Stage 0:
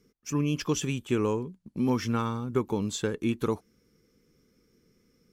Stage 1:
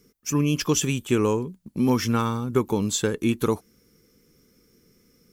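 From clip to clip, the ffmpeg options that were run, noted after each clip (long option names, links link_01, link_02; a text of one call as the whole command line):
ffmpeg -i in.wav -af "highshelf=frequency=7900:gain=11.5,volume=5dB" out.wav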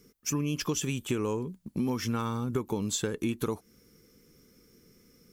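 ffmpeg -i in.wav -af "acompressor=threshold=-28dB:ratio=4" out.wav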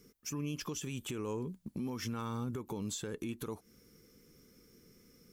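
ffmpeg -i in.wav -af "alimiter=level_in=4dB:limit=-24dB:level=0:latency=1:release=179,volume=-4dB,volume=-2dB" out.wav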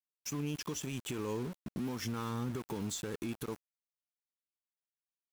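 ffmpeg -i in.wav -af "aeval=exprs='val(0)*gte(abs(val(0)),0.00596)':channel_layout=same,volume=1dB" out.wav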